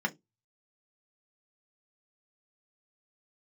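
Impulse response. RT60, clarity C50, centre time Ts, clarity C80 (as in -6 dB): 0.15 s, 24.5 dB, 5 ms, 33.0 dB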